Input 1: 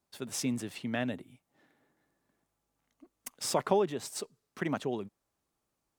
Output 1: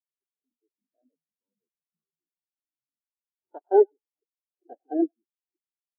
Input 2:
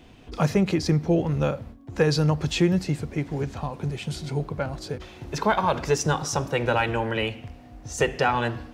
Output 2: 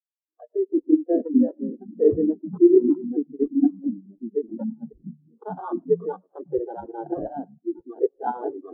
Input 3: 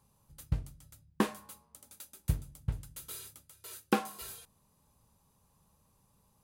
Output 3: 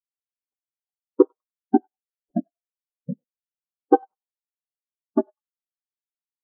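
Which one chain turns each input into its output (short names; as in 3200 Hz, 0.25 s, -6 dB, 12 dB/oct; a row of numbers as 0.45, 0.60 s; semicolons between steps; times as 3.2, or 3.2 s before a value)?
bin magnitudes rounded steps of 30 dB; level quantiser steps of 14 dB; brick-wall FIR band-pass 250–6800 Hz; low shelf 400 Hz +2 dB; AGC gain up to 4 dB; echoes that change speed 0.229 s, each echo -4 st, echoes 3; bell 740 Hz +3.5 dB 0.23 oct; thinning echo 99 ms, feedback 57%, high-pass 1000 Hz, level -7 dB; sample-and-hold 19×; spectral expander 4:1; match loudness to -24 LUFS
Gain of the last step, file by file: +6.0, +6.0, +12.0 dB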